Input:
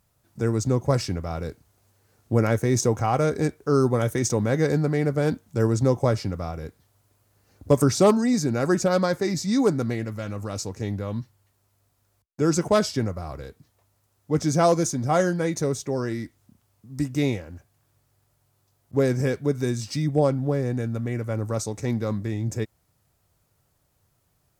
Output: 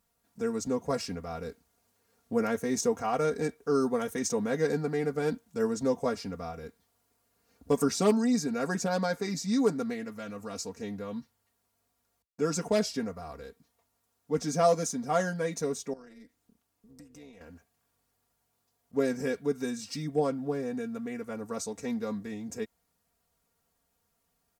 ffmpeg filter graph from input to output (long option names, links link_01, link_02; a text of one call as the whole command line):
ffmpeg -i in.wav -filter_complex "[0:a]asettb=1/sr,asplit=3[link_01][link_02][link_03];[link_01]atrim=end=15.934[link_04];[link_02]atrim=start=15.93:end=17.41,asetpts=PTS-STARTPTS,afade=type=in:duration=0.004:curve=qsin,afade=type=out:start_time=1.476:duration=0.004:curve=qsin,tremolo=f=210:d=0.571,acompressor=threshold=-40dB:ratio=6:attack=3.2:release=140:knee=1:detection=peak[link_05];[link_03]atrim=start=17.406[link_06];[link_04][link_05]acrossfade=duration=0.004:curve1=hsin:curve2=qsin[link_07];[link_07][link_06]acrossfade=duration=0.004:curve1=qsin:curve2=hsin,lowshelf=frequency=160:gain=-6.5,aecho=1:1:4.3:0.86,volume=-7.5dB" out.wav